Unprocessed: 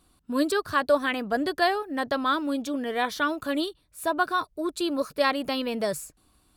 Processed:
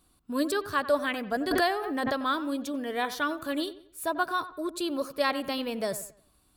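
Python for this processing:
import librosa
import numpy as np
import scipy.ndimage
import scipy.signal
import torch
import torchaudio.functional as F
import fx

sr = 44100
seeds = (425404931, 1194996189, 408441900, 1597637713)

y = fx.high_shelf(x, sr, hz=10000.0, db=6.5)
y = fx.echo_wet_lowpass(y, sr, ms=92, feedback_pct=34, hz=2600.0, wet_db=-14.0)
y = fx.pre_swell(y, sr, db_per_s=24.0, at=(1.51, 2.23))
y = y * librosa.db_to_amplitude(-3.5)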